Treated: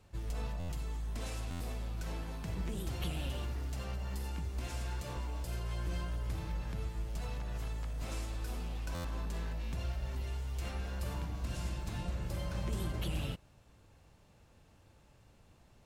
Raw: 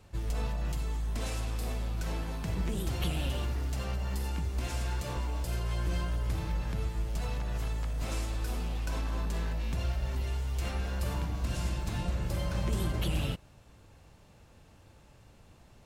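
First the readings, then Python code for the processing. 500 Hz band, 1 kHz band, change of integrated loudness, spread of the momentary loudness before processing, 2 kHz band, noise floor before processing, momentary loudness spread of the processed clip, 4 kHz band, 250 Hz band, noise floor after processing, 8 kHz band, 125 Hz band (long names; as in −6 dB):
−5.5 dB, −5.5 dB, −5.5 dB, 3 LU, −5.5 dB, −58 dBFS, 3 LU, −5.5 dB, −5.5 dB, −63 dBFS, −5.5 dB, −5.5 dB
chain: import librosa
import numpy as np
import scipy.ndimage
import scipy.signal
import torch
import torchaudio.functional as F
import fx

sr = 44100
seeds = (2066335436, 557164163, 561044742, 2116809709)

y = fx.buffer_glitch(x, sr, at_s=(0.59, 1.5, 8.94), block=512, repeats=8)
y = y * librosa.db_to_amplitude(-5.5)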